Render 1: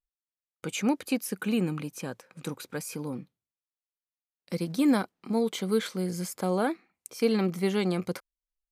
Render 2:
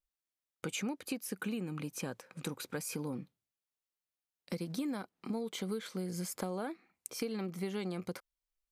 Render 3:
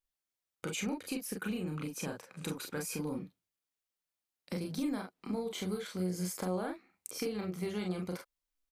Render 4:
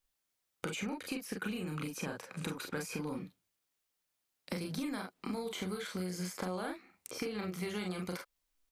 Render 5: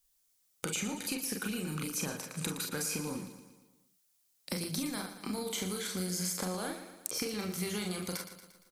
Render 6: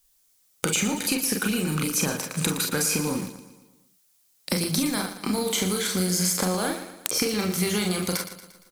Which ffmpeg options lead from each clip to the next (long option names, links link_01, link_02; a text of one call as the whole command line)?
ffmpeg -i in.wav -af "acompressor=threshold=-34dB:ratio=12" out.wav
ffmpeg -i in.wav -af "tremolo=f=280:d=0.182,aecho=1:1:33|44:0.501|0.562" out.wav
ffmpeg -i in.wav -filter_complex "[0:a]acrossover=split=1100|2200|5700[link_01][link_02][link_03][link_04];[link_01]acompressor=threshold=-44dB:ratio=4[link_05];[link_02]acompressor=threshold=-51dB:ratio=4[link_06];[link_03]acompressor=threshold=-56dB:ratio=4[link_07];[link_04]acompressor=threshold=-59dB:ratio=4[link_08];[link_05][link_06][link_07][link_08]amix=inputs=4:normalize=0,volume=6.5dB" out.wav
ffmpeg -i in.wav -af "bass=frequency=250:gain=2,treble=frequency=4000:gain=12,aecho=1:1:116|232|348|464|580|696:0.282|0.152|0.0822|0.0444|0.024|0.0129" out.wav
ffmpeg -i in.wav -filter_complex "[0:a]asplit=2[link_01][link_02];[link_02]acrusher=bits=6:mix=0:aa=0.000001,volume=-10.5dB[link_03];[link_01][link_03]amix=inputs=2:normalize=0,aeval=exprs='(mod(5.01*val(0)+1,2)-1)/5.01':channel_layout=same,volume=8.5dB" out.wav